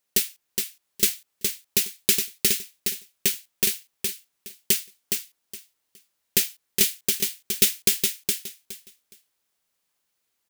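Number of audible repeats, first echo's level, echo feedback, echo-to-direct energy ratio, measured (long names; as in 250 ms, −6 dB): 3, −5.0 dB, 21%, −5.0 dB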